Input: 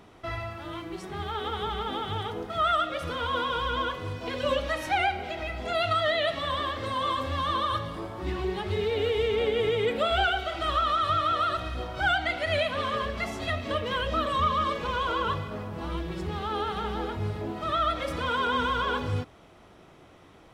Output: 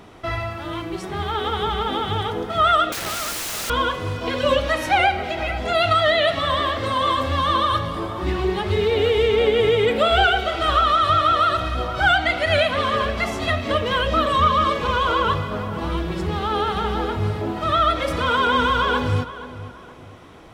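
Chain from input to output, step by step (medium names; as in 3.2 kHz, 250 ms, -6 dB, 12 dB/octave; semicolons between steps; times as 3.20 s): 2.92–3.70 s: integer overflow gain 31.5 dB; filtered feedback delay 473 ms, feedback 34%, low-pass 3 kHz, level -14.5 dB; trim +8 dB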